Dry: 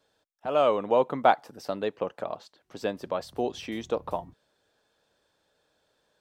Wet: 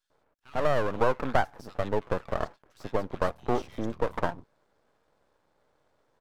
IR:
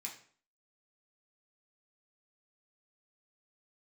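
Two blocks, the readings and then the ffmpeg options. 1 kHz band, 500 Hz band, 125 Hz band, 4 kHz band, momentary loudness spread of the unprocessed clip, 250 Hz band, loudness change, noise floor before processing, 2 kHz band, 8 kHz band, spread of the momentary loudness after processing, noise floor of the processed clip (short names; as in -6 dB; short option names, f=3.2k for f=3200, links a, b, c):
-3.0 dB, -2.5 dB, +8.5 dB, -4.5 dB, 14 LU, 0.0 dB, -2.0 dB, -74 dBFS, +2.5 dB, n/a, 9 LU, -72 dBFS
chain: -filter_complex "[0:a]highshelf=f=1.7k:t=q:w=1.5:g=-10,acompressor=threshold=-23dB:ratio=4,acrossover=split=1900[a][b];[a]adelay=100[c];[c][b]amix=inputs=2:normalize=0,aeval=exprs='max(val(0),0)':c=same,volume=6.5dB"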